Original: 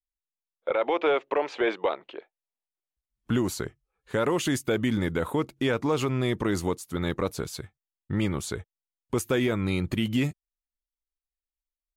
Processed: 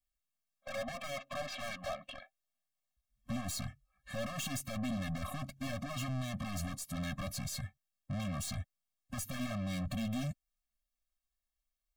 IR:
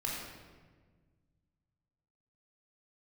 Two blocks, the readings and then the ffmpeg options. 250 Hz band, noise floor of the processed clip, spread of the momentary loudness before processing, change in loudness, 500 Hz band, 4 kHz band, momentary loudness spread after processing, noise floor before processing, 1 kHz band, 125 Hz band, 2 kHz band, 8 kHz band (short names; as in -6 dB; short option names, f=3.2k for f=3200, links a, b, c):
-12.0 dB, under -85 dBFS, 11 LU, -12.0 dB, -17.5 dB, -8.0 dB, 8 LU, under -85 dBFS, -12.0 dB, -8.5 dB, -11.0 dB, -4.5 dB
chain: -af "aeval=exprs='(tanh(100*val(0)+0.2)-tanh(0.2))/100':c=same,afftfilt=real='re*eq(mod(floor(b*sr/1024/260),2),0)':imag='im*eq(mod(floor(b*sr/1024/260),2),0)':win_size=1024:overlap=0.75,volume=6dB"